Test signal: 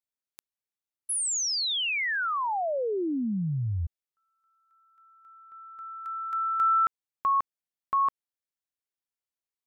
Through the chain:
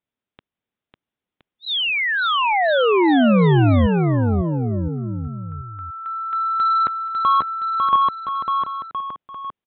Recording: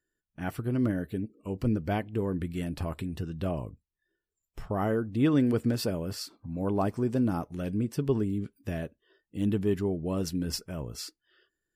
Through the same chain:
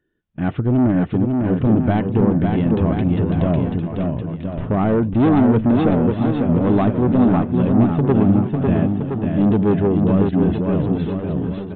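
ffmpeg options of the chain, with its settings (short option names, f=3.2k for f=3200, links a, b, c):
-af "equalizer=f=190:w=0.4:g=9.5,aresample=8000,asoftclip=type=tanh:threshold=-19dB,aresample=44100,aecho=1:1:550|1018|1415|1753|2040:0.631|0.398|0.251|0.158|0.1,volume=7.5dB"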